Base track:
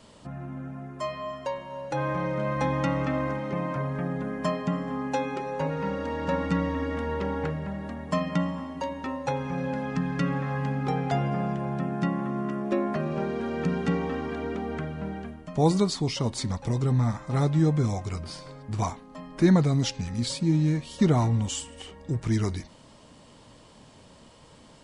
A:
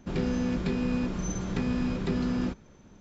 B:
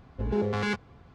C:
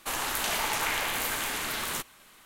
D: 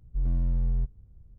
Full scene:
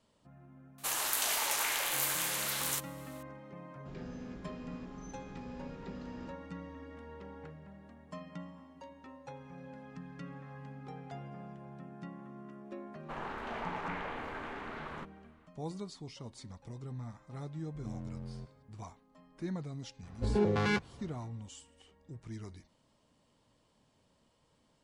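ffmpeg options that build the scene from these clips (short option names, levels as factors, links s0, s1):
-filter_complex "[3:a]asplit=2[s0][s1];[0:a]volume=0.112[s2];[s0]bass=f=250:g=-14,treble=f=4000:g=7[s3];[s1]lowpass=1400[s4];[4:a]highpass=190[s5];[s3]atrim=end=2.45,asetpts=PTS-STARTPTS,volume=0.501,afade=t=in:d=0.004:c=hsin,afade=t=out:st=2.446:d=0.004:c=hsin,adelay=780[s6];[1:a]atrim=end=3,asetpts=PTS-STARTPTS,volume=0.133,afade=t=in:d=0.004:c=hsin,afade=t=out:st=2.996:d=0.004:c=hsin,adelay=3790[s7];[s4]atrim=end=2.45,asetpts=PTS-STARTPTS,volume=0.501,afade=t=in:d=0.004:c=hsin,afade=t=out:st=2.446:d=0.004:c=hsin,adelay=13030[s8];[s5]atrim=end=1.38,asetpts=PTS-STARTPTS,volume=0.794,afade=t=in:d=0.004:c=hsin,afade=t=out:st=1.376:d=0.004:c=hsin,adelay=17600[s9];[2:a]atrim=end=1.14,asetpts=PTS-STARTPTS,volume=0.841,afade=t=in:d=0.004:c=hsin,afade=t=out:st=1.136:d=0.004:c=hsin,adelay=20030[s10];[s2][s6][s7][s8][s9][s10]amix=inputs=6:normalize=0"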